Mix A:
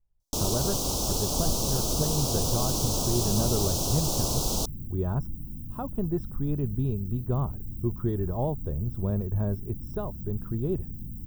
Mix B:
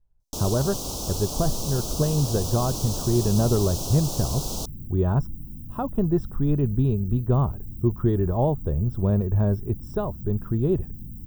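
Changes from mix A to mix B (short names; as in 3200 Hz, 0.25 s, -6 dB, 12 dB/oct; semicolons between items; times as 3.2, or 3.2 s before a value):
speech +6.5 dB; first sound -3.0 dB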